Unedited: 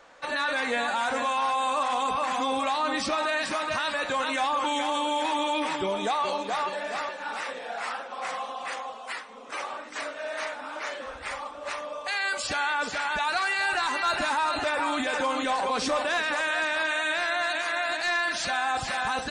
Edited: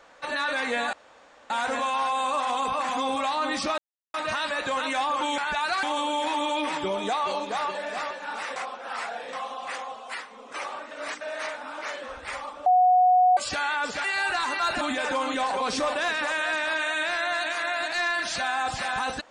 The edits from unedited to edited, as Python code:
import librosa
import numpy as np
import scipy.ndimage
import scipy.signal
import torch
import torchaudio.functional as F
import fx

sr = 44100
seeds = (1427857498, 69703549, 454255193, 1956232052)

y = fx.edit(x, sr, fx.insert_room_tone(at_s=0.93, length_s=0.57),
    fx.silence(start_s=3.21, length_s=0.36),
    fx.reverse_span(start_s=7.54, length_s=0.77),
    fx.reverse_span(start_s=9.89, length_s=0.3),
    fx.bleep(start_s=11.64, length_s=0.71, hz=732.0, db=-15.0),
    fx.move(start_s=13.02, length_s=0.45, to_s=4.81),
    fx.cut(start_s=14.24, length_s=0.66), tone=tone)